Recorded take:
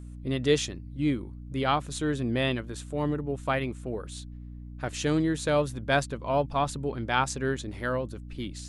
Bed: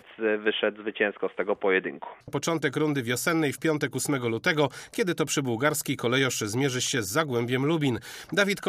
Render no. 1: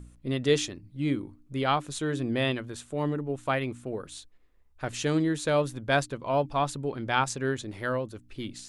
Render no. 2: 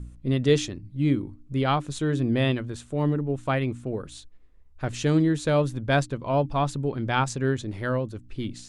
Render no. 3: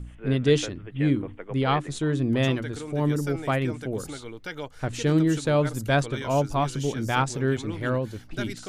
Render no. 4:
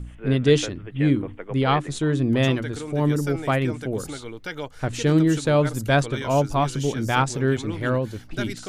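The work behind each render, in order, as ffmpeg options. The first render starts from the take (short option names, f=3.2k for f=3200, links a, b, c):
-af "bandreject=f=60:t=h:w=4,bandreject=f=120:t=h:w=4,bandreject=f=180:t=h:w=4,bandreject=f=240:t=h:w=4,bandreject=f=300:t=h:w=4"
-af "lowpass=9.6k,lowshelf=f=270:g=9.5"
-filter_complex "[1:a]volume=-12dB[a];[0:a][a]amix=inputs=2:normalize=0"
-af "volume=3dB"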